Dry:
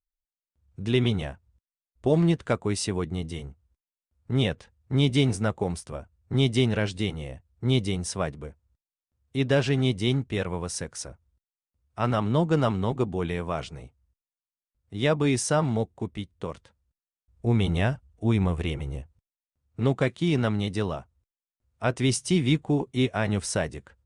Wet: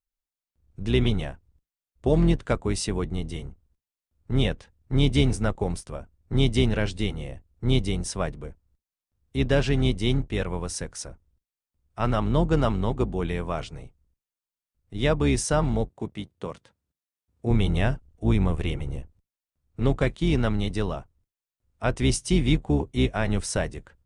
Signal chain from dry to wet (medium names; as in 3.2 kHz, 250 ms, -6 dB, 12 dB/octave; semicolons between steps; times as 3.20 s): octave divider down 2 oct, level -2 dB; 15.89–17.51 s: high-pass 110 Hz 12 dB/octave